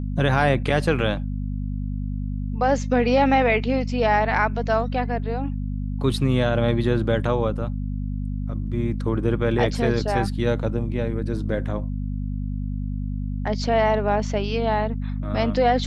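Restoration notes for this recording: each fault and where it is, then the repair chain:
hum 50 Hz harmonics 5 -27 dBFS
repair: de-hum 50 Hz, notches 5

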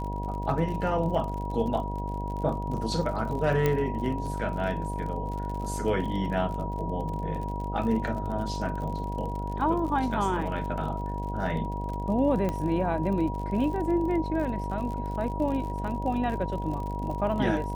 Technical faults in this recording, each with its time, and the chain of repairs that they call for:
buzz 50 Hz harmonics 16 -33 dBFS
crackle 48 per s -35 dBFS
whine 960 Hz -35 dBFS
3.66 s: pop -12 dBFS
12.49 s: pop -17 dBFS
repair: de-click; band-stop 960 Hz, Q 30; de-hum 50 Hz, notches 16

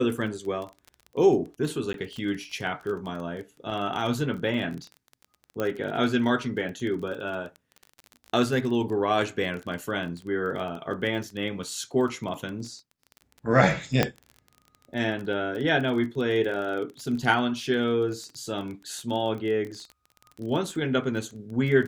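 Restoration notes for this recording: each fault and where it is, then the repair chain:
crackle 24 per s -33 dBFS
1.93–1.94 s: dropout 12 ms
5.60 s: pop -16 dBFS
14.03 s: pop -6 dBFS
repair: de-click; interpolate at 1.93 s, 12 ms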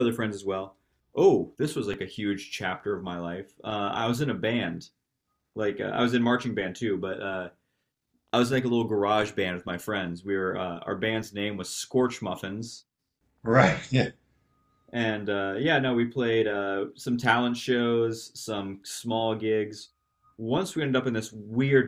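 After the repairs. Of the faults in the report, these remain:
nothing left

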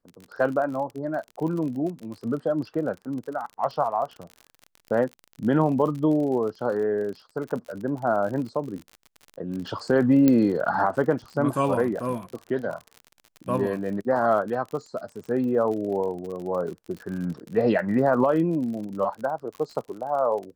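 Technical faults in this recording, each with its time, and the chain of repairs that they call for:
crackle 47 per s -33 dBFS
10.28 s: pop -8 dBFS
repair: de-click

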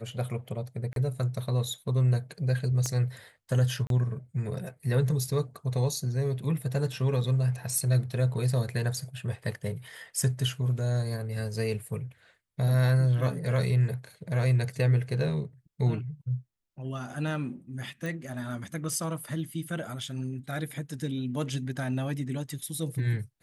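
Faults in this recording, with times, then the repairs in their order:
0.93–0.96 s: dropout 32 ms
2.86 s: pop -18 dBFS
3.87–3.90 s: dropout 32 ms
18.06 s: pop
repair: de-click; interpolate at 0.93 s, 32 ms; interpolate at 3.87 s, 32 ms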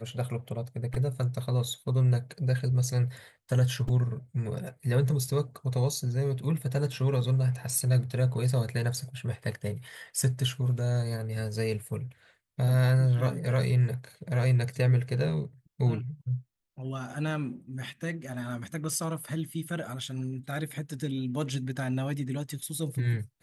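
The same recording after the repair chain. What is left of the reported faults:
2.86 s: pop

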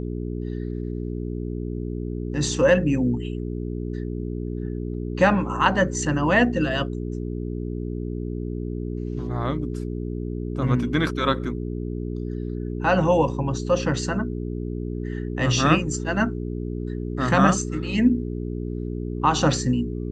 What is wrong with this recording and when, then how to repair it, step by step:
hum 60 Hz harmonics 7 -29 dBFS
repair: de-hum 60 Hz, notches 7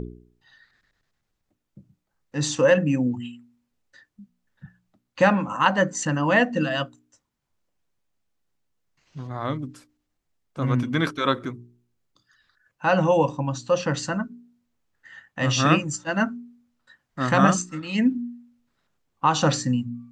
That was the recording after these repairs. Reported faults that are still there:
nothing left

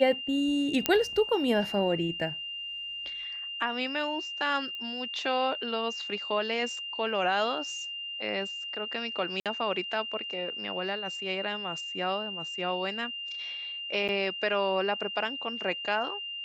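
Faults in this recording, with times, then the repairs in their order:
whine 2.8 kHz -35 dBFS
0.86 s: pop -7 dBFS
4.75 s: pop -27 dBFS
9.40–9.46 s: dropout 57 ms
14.08–14.09 s: dropout 8.1 ms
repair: de-click; band-stop 2.8 kHz, Q 30; interpolate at 9.40 s, 57 ms; interpolate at 14.08 s, 8.1 ms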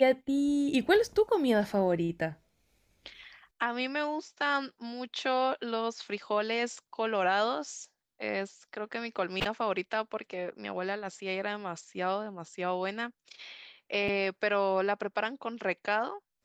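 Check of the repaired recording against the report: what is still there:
nothing left

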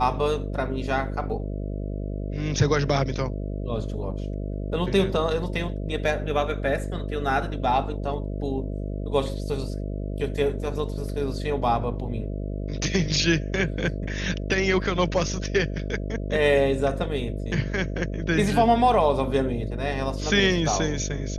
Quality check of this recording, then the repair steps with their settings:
buzz 50 Hz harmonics 13 -30 dBFS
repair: de-hum 50 Hz, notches 13

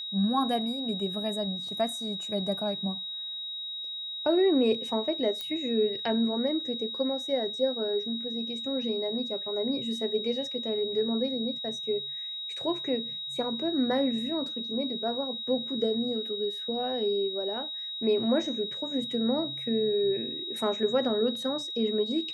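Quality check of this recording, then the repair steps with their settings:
whine 3.8 kHz -34 dBFS
5.41 s: pop -20 dBFS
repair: de-click; band-stop 3.8 kHz, Q 30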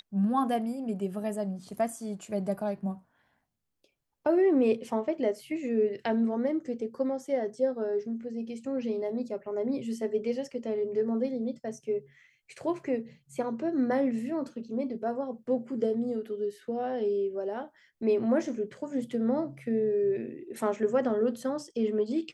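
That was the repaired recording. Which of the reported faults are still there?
nothing left

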